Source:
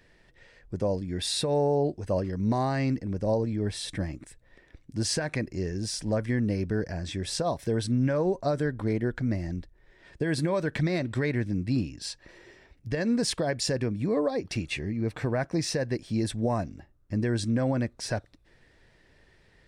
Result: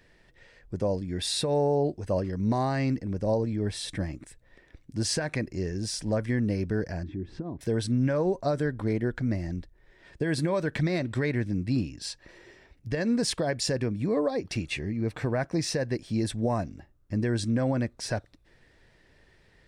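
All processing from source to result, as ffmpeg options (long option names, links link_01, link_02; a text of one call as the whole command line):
ffmpeg -i in.wav -filter_complex "[0:a]asettb=1/sr,asplit=3[link_01][link_02][link_03];[link_01]atrim=end=7.034[link_04];[link_02]atrim=start=7.03:end=7.61,asetpts=PTS-STARTPTS,afade=type=in:duration=0.004:curve=qsin,afade=type=out:start_time=0.576:duration=0.004:curve=qsin,lowpass=1400,lowshelf=frequency=430:width_type=q:width=3:gain=8.5,acompressor=threshold=-41dB:ratio=2:attack=3.2:release=140:knee=1:detection=peak[link_05];[link_03]atrim=start=7.606[link_06];[link_04][link_05]acrossfade=duration=0.004:curve1=hsin:curve2=qsin[link_07];[link_07][link_06]acrossfade=duration=0.004:curve1=qsin:curve2=hsin" out.wav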